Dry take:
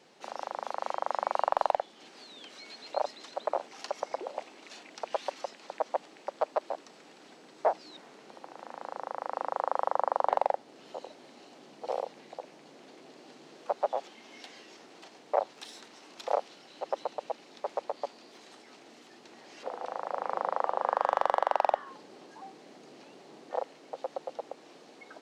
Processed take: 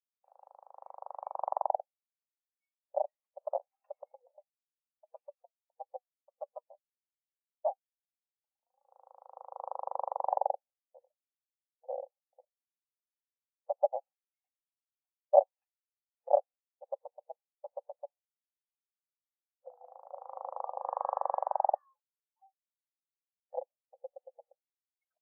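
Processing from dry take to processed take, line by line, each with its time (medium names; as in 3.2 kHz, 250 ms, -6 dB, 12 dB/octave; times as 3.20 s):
4.12–8.89 s: flange 1.7 Hz, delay 3.4 ms, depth 1.7 ms, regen +62%
whole clip: FFT band-pass 480–2800 Hz; expander -46 dBFS; spectral contrast expander 2.5:1; trim +3 dB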